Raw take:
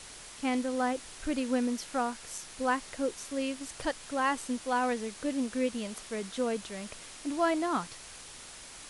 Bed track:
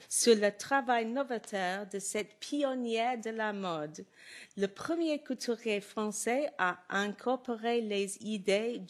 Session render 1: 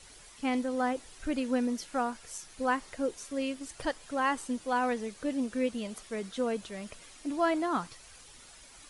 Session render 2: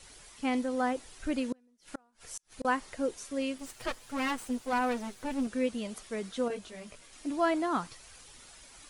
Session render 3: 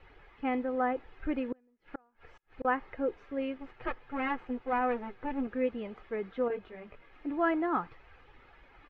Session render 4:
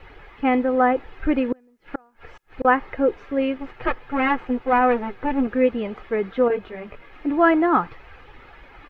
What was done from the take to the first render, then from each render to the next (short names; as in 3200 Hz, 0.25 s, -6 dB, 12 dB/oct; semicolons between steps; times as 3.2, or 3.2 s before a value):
denoiser 9 dB, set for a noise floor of -48 dBFS
1.52–2.65 flipped gate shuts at -25 dBFS, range -36 dB; 3.58–5.47 minimum comb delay 8 ms; 6.48–7.13 detuned doubles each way 13 cents
LPF 2300 Hz 24 dB/oct; comb 2.4 ms, depth 36%
gain +12 dB